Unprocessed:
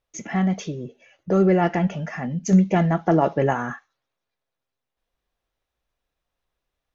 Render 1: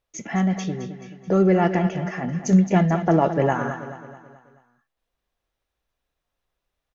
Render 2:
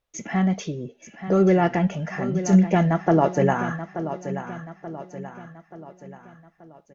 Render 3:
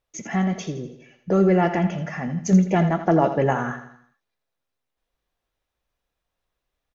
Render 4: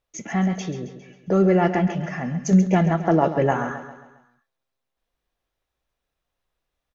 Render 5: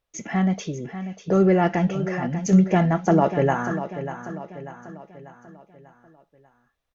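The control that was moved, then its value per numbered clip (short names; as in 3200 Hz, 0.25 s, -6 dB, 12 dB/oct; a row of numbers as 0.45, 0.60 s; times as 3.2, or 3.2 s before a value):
feedback echo, time: 216, 881, 82, 135, 592 ms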